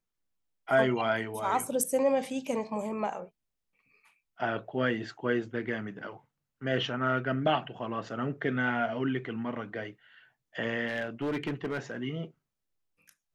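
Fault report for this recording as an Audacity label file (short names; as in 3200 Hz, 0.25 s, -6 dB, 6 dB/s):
10.870000	11.970000	clipped -27.5 dBFS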